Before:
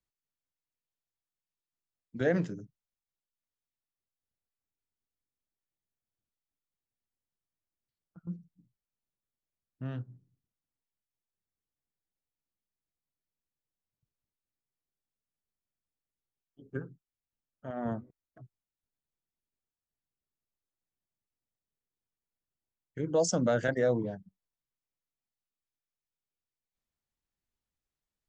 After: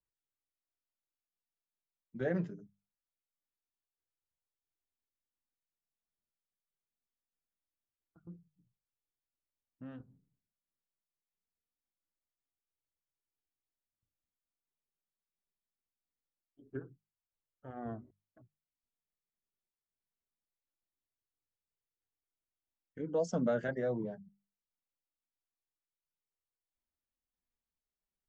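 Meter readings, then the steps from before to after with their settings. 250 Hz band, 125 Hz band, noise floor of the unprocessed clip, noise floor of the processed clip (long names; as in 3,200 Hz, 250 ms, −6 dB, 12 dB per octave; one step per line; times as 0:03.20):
−5.0 dB, −6.5 dB, below −85 dBFS, below −85 dBFS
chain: shaped tremolo saw down 1.5 Hz, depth 30%
low-pass filter 1,800 Hz 6 dB per octave
flanger 0.23 Hz, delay 1.9 ms, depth 3.5 ms, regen −33%
mains-hum notches 50/100/150/200 Hz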